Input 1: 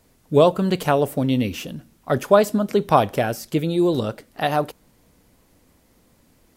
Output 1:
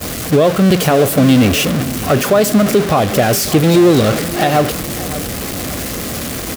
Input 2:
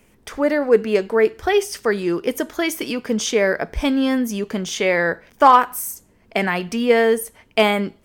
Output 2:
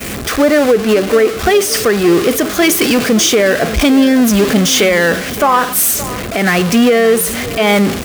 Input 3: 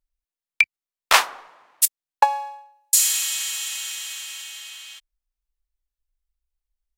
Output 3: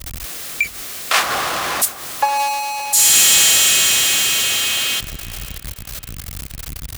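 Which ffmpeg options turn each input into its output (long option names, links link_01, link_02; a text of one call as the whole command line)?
ffmpeg -i in.wav -filter_complex "[0:a]aeval=exprs='val(0)+0.5*0.112*sgn(val(0))':channel_layout=same,bandreject=frequency=920:width=5.8,alimiter=limit=-12dB:level=0:latency=1:release=177,acontrast=49,agate=range=-33dB:threshold=-15dB:ratio=3:detection=peak,highpass=48,asplit=2[link_01][link_02];[link_02]adelay=571,lowpass=frequency=2300:poles=1,volume=-15dB,asplit=2[link_03][link_04];[link_04]adelay=571,lowpass=frequency=2300:poles=1,volume=0.42,asplit=2[link_05][link_06];[link_06]adelay=571,lowpass=frequency=2300:poles=1,volume=0.42,asplit=2[link_07][link_08];[link_08]adelay=571,lowpass=frequency=2300:poles=1,volume=0.42[link_09];[link_01][link_03][link_05][link_07][link_09]amix=inputs=5:normalize=0,volume=3.5dB" out.wav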